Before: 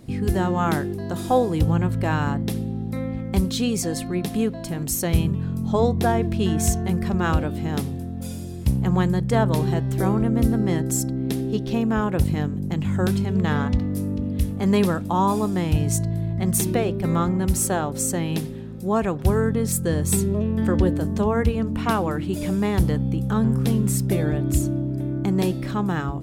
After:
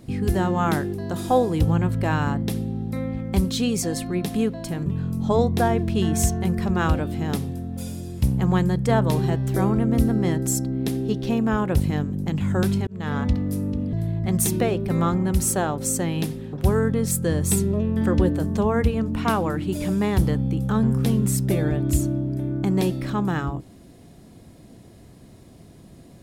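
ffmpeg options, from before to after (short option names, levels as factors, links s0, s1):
-filter_complex "[0:a]asplit=5[s0][s1][s2][s3][s4];[s0]atrim=end=4.862[s5];[s1]atrim=start=5.298:end=13.31,asetpts=PTS-STARTPTS,afade=t=out:st=8.008:d=0.004:c=hsin[s6];[s2]atrim=start=13.31:end=14.372,asetpts=PTS-STARTPTS,afade=t=in:d=0.38[s7];[s3]atrim=start=16.068:end=18.672[s8];[s4]atrim=start=19.138[s9];[s6][s7]concat=n=2:v=0:a=1[s10];[s5][s10]acrossfade=d=0.004:c1=hsin:c2=hsin[s11];[s11][s8]acrossfade=d=0.004:c1=hsin:c2=hsin[s12];[s12][s9]acrossfade=d=0.004:c1=hsin:c2=hsin"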